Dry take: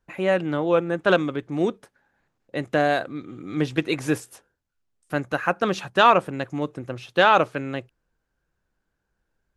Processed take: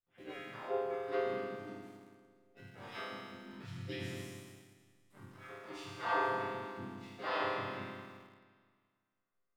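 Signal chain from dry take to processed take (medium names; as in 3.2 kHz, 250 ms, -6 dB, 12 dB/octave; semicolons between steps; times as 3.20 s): slow attack 121 ms; feedback comb 130 Hz, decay 1.9 s, mix 100%; harmony voices -5 st -3 dB, -4 st -1 dB, +5 st -3 dB; in parallel at -10 dB: small samples zeroed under -52.5 dBFS; on the sum: trim -2.5 dB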